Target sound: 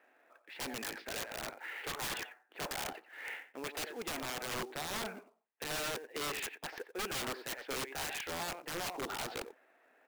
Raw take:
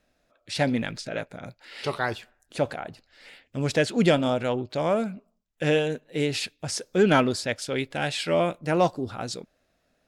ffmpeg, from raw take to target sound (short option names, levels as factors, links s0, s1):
-filter_complex "[0:a]areverse,acompressor=threshold=0.0178:ratio=20,areverse,highpass=f=350:w=0.5412,highpass=f=350:w=1.3066,equalizer=f=580:t=q:w=4:g=-7,equalizer=f=860:t=q:w=4:g=5,equalizer=f=1800:t=q:w=4:g=4,lowpass=f=2500:w=0.5412,lowpass=f=2500:w=1.3066,asplit=2[s0][s1];[s1]adelay=90,highpass=300,lowpass=3400,asoftclip=type=hard:threshold=0.0168,volume=0.251[s2];[s0][s2]amix=inputs=2:normalize=0,aeval=exprs='(mod(84.1*val(0)+1,2)-1)/84.1':c=same,acrusher=bits=4:mode=log:mix=0:aa=0.000001,volume=2"